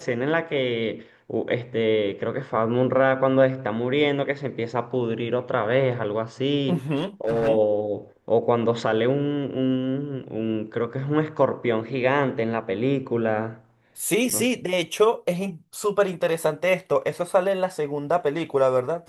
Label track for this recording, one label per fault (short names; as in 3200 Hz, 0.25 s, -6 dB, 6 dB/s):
6.950000	7.490000	clipped -19.5 dBFS
14.300000	14.310000	gap 7.5 ms